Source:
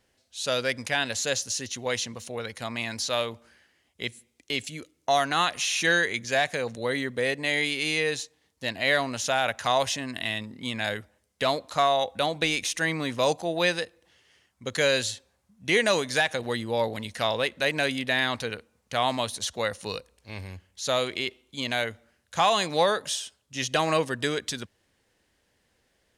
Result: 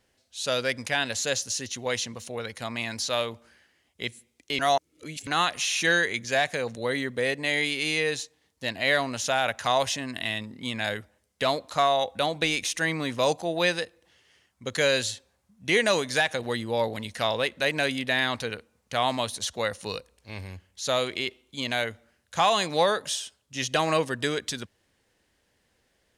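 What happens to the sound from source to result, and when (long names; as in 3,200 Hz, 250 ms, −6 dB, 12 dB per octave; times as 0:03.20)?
0:04.59–0:05.27: reverse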